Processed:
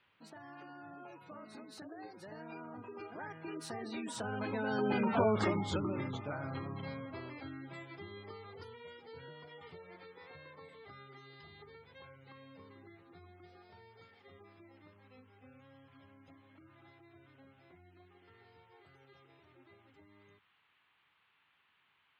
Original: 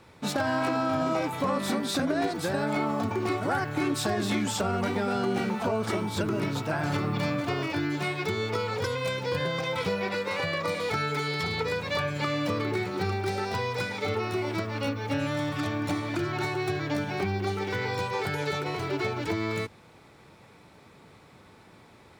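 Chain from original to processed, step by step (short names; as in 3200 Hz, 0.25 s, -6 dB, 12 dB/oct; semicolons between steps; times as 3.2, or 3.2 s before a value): Doppler pass-by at 5.24, 30 m/s, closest 10 m; band noise 840–3200 Hz -73 dBFS; notches 60/120/180 Hz; spectral gate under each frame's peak -25 dB strong; gain -1 dB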